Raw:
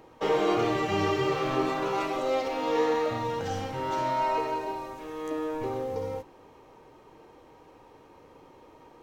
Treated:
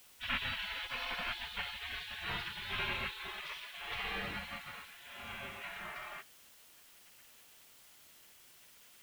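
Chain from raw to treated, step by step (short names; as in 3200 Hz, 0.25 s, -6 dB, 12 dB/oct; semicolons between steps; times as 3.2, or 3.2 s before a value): LPF 2800 Hz 24 dB/oct; spectral gate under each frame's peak -30 dB weak; requantised 12-bit, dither triangular; gain +11.5 dB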